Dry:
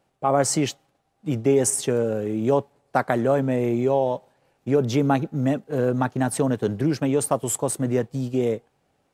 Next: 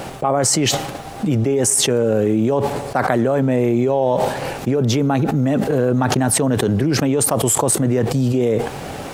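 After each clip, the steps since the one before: level flattener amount 100%; trim -1 dB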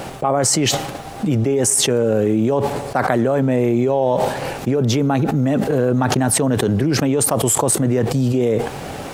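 no audible change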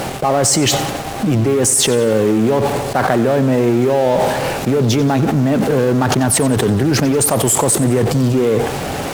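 in parallel at -10 dB: fuzz box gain 39 dB, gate -34 dBFS; on the sum: bit-crushed delay 91 ms, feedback 55%, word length 6-bit, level -15 dB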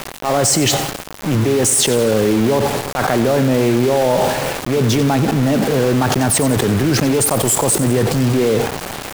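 transient shaper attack -7 dB, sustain 0 dB; small samples zeroed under -18 dBFS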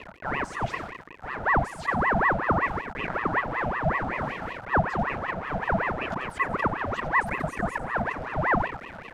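two resonant band-passes 680 Hz, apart 1.3 oct; ring modulator with a swept carrier 890 Hz, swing 75%, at 5.3 Hz

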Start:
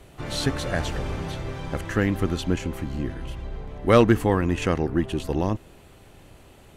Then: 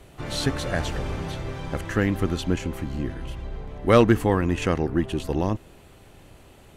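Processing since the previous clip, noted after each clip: no audible change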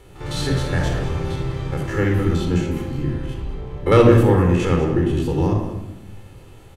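spectrogram pixelated in time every 50 ms; delay 197 ms -13 dB; simulated room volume 3000 m³, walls furnished, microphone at 4.2 m

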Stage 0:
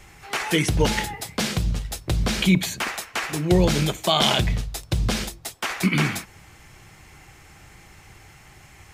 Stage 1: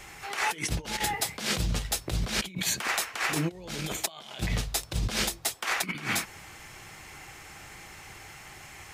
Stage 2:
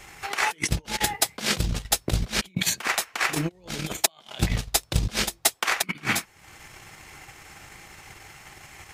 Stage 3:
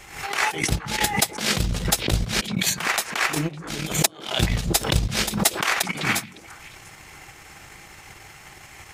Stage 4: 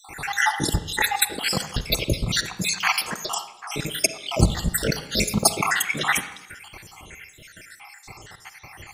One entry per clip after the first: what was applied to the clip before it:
bass shelf 260 Hz -9.5 dB; compressor with a negative ratio -30 dBFS, ratio -0.5
transient shaper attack +10 dB, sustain -10 dB
repeats whose band climbs or falls 139 ms, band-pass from 160 Hz, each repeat 1.4 oct, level -10 dB; swell ahead of each attack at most 98 dB/s; trim +1.5 dB
random holes in the spectrogram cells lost 69%; reverberation RT60 0.85 s, pre-delay 38 ms, DRR 10.5 dB; trim +5 dB

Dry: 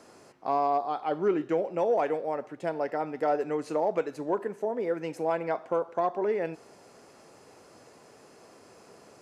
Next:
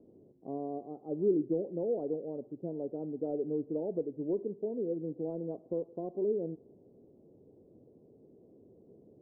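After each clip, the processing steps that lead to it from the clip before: inverse Chebyshev low-pass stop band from 2.5 kHz, stop band 80 dB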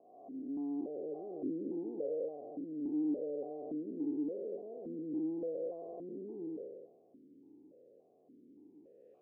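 spectral blur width 578 ms; stepped vowel filter 3.5 Hz; trim +10 dB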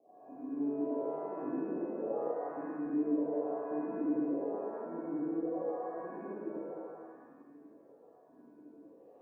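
pitch-shifted reverb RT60 1.5 s, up +7 st, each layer -8 dB, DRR -7 dB; trim -6 dB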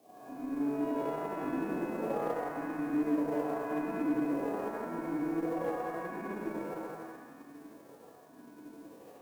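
formants flattened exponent 0.6; in parallel at -2 dB: compression, threshold -43 dBFS, peak gain reduction 15 dB; on the sum: Chebyshev shaper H 8 -32 dB, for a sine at -20.5 dBFS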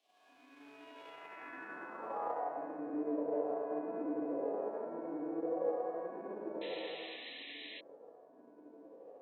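band-pass sweep 3.1 kHz -> 530 Hz, 1.06–2.82 s; high-pass 75 Hz; painted sound noise, 6.61–7.81 s, 1.7–4.1 kHz -51 dBFS; trim +2 dB

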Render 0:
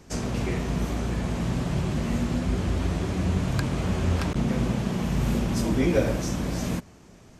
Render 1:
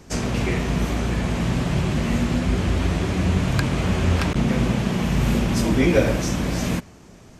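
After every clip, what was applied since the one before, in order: dynamic bell 2.4 kHz, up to +4 dB, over -47 dBFS, Q 0.95; trim +4.5 dB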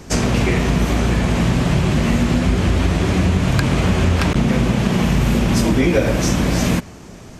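compression 4:1, threshold -21 dBFS, peak gain reduction 8.5 dB; trim +8.5 dB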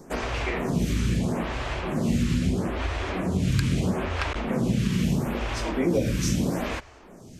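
lamp-driven phase shifter 0.77 Hz; trim -5.5 dB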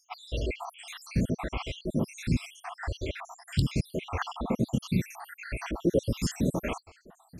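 random holes in the spectrogram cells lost 74%

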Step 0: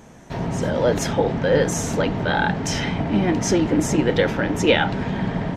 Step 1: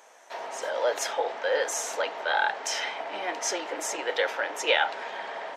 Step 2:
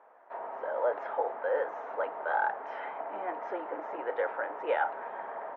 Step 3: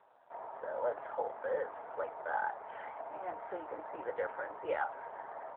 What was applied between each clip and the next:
high-pass 560 Hz 24 dB/octave; trim -3 dB
four-pole ladder low-pass 1.6 kHz, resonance 25%; trim +2 dB
trim -4.5 dB; AMR-NB 7.4 kbps 8 kHz

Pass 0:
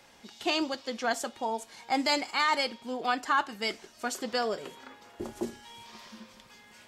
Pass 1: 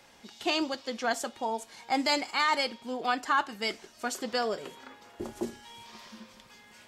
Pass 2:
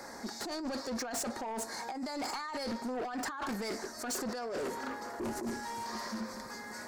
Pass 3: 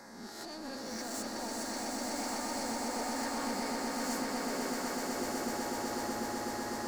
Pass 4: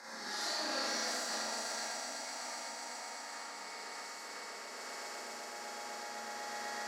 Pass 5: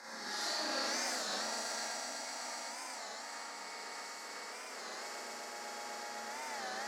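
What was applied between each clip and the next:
no audible change
FFT filter 160 Hz 0 dB, 230 Hz +8 dB, 1.9 kHz +6 dB, 3 kHz -22 dB, 4.3 kHz +4 dB; compressor with a negative ratio -32 dBFS, ratio -1; saturation -33 dBFS, distortion -8 dB
reverse spectral sustain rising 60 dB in 0.86 s; on a send: echo with a slow build-up 125 ms, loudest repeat 8, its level -5 dB; on the sum: trim -8.5 dB
compressor with a negative ratio -41 dBFS, ratio -0.5; band-pass filter 2.8 kHz, Q 0.51; Schroeder reverb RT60 1.3 s, combs from 28 ms, DRR -7.5 dB; trim -2 dB
warped record 33 1/3 rpm, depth 160 cents

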